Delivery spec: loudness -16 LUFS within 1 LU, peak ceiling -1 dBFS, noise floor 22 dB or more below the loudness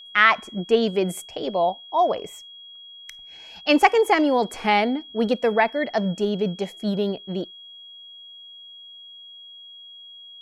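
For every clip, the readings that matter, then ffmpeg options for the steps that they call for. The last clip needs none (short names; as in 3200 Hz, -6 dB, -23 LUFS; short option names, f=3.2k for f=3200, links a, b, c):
steady tone 3300 Hz; tone level -41 dBFS; loudness -22.0 LUFS; peak -2.5 dBFS; loudness target -16.0 LUFS
-> -af "bandreject=f=3.3k:w=30"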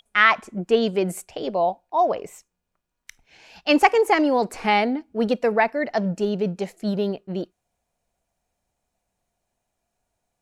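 steady tone none; loudness -22.0 LUFS; peak -2.5 dBFS; loudness target -16.0 LUFS
-> -af "volume=6dB,alimiter=limit=-1dB:level=0:latency=1"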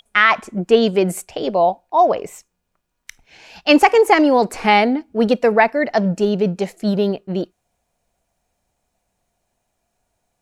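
loudness -16.5 LUFS; peak -1.0 dBFS; noise floor -74 dBFS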